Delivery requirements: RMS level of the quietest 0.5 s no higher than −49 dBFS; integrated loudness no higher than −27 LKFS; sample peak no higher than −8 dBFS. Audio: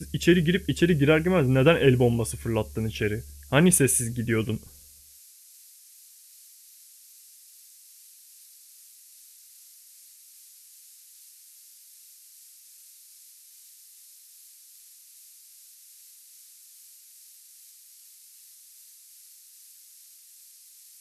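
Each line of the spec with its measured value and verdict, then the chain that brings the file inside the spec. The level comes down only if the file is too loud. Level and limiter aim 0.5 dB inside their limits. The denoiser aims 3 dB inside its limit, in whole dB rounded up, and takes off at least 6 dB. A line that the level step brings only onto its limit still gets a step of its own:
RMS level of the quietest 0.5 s −52 dBFS: in spec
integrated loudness −23.0 LKFS: out of spec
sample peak −6.0 dBFS: out of spec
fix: level −4.5 dB

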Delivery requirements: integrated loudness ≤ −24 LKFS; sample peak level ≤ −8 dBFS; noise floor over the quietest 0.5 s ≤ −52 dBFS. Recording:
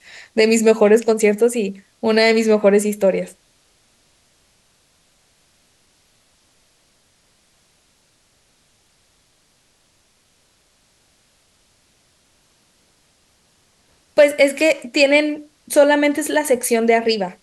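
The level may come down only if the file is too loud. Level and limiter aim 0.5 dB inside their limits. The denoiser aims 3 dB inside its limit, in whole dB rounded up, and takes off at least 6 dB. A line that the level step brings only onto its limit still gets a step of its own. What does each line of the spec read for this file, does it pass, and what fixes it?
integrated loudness −16.0 LKFS: out of spec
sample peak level −2.0 dBFS: out of spec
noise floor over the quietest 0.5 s −60 dBFS: in spec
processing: level −8.5 dB

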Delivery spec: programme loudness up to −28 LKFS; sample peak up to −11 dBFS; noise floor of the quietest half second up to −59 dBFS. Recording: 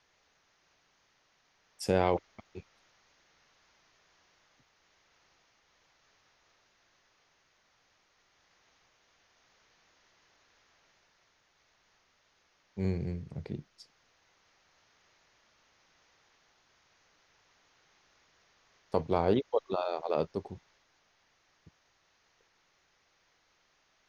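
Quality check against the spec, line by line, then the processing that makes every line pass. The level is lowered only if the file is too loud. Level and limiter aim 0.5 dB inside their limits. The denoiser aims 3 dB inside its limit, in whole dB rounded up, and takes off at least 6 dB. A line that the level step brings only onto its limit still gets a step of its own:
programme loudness −33.0 LKFS: in spec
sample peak −12.5 dBFS: in spec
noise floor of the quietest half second −71 dBFS: in spec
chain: no processing needed

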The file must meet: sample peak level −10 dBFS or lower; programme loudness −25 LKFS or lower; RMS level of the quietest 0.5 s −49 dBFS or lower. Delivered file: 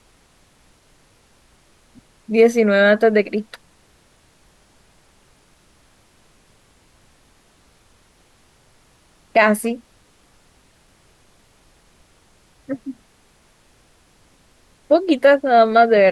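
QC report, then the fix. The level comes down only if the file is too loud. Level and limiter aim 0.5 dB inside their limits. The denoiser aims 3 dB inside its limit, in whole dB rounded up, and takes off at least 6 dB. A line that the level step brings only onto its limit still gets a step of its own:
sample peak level −3.5 dBFS: out of spec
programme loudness −16.0 LKFS: out of spec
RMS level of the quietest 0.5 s −56 dBFS: in spec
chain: level −9.5 dB

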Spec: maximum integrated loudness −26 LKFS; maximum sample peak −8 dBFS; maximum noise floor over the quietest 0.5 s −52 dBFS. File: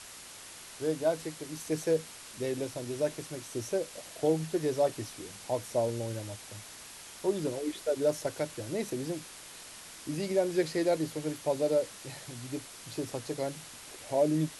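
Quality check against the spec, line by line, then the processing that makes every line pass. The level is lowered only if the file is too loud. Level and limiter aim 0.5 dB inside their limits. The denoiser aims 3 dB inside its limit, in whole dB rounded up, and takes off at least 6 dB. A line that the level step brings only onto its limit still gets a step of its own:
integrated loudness −33.0 LKFS: in spec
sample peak −15.5 dBFS: in spec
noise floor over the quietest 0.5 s −48 dBFS: out of spec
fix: broadband denoise 7 dB, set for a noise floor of −48 dBFS

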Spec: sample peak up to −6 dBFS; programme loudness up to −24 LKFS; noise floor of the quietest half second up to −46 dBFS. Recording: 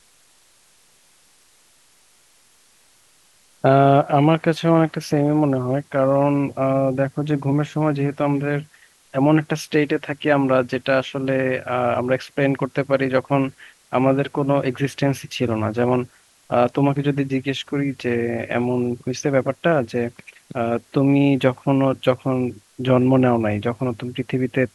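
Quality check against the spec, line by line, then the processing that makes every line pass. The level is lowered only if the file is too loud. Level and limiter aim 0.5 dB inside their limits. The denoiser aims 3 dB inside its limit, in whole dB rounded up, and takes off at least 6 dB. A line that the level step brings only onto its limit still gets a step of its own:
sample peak −3.0 dBFS: out of spec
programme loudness −20.5 LKFS: out of spec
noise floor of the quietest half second −56 dBFS: in spec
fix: level −4 dB

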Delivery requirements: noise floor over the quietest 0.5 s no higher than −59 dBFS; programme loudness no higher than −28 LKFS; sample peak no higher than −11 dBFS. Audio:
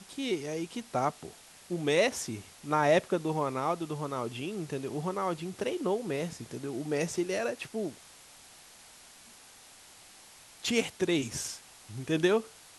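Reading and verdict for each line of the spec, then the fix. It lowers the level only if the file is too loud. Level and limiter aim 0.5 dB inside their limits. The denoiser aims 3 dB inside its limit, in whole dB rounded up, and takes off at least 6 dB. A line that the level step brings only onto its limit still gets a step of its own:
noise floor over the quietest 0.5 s −54 dBFS: out of spec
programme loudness −32.0 LKFS: in spec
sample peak −13.0 dBFS: in spec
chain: broadband denoise 8 dB, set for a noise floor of −54 dBFS

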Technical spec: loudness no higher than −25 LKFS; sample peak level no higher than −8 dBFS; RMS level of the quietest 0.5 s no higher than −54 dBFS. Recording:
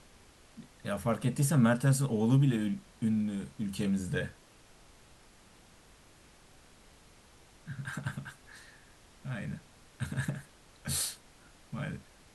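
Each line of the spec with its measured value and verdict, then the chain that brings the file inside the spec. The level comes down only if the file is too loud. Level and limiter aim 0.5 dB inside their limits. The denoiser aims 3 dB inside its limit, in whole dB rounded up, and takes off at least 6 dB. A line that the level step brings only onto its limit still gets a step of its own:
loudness −32.0 LKFS: in spec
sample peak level −15.5 dBFS: in spec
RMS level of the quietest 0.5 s −59 dBFS: in spec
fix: no processing needed

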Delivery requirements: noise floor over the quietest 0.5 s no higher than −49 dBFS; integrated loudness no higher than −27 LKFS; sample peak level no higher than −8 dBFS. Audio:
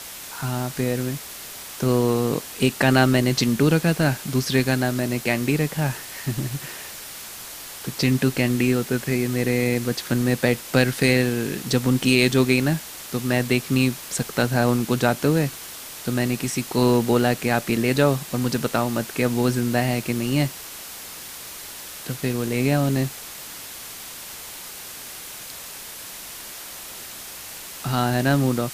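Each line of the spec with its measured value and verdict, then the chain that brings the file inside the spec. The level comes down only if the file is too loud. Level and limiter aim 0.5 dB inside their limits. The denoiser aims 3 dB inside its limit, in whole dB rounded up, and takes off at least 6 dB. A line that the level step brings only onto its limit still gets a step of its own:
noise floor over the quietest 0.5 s −37 dBFS: out of spec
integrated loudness −22.0 LKFS: out of spec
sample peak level −3.0 dBFS: out of spec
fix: broadband denoise 10 dB, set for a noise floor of −37 dBFS
level −5.5 dB

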